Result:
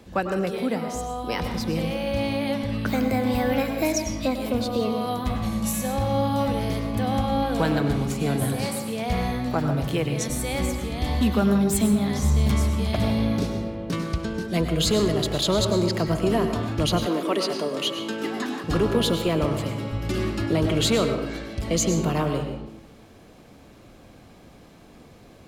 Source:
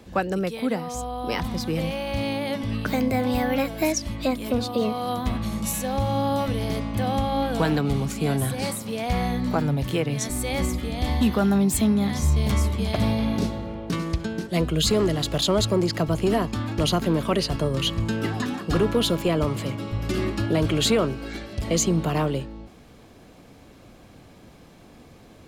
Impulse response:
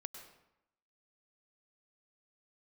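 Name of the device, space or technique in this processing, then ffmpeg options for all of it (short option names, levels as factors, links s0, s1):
bathroom: -filter_complex "[1:a]atrim=start_sample=2205[s0];[0:a][s0]afir=irnorm=-1:irlink=0,asettb=1/sr,asplit=3[s1][s2][s3];[s1]atrim=end=17.064[s4];[s2]atrim=start=17.06:end=18.64,asetpts=PTS-STARTPTS,afade=t=in:d=0.004:c=qsin,afade=t=out:st=1.576:d=0.004:c=qsin,highpass=f=230:w=0.5412,highpass=f=230:w=1.3066[s5];[s3]atrim=start=18.636[s6];[s4][s5]acrossfade=d=0.004:c1=hsin:c2=qsin[s7];[s7][s6]acrossfade=d=0.004:c1=qsin:c2=hsin,volume=1.5"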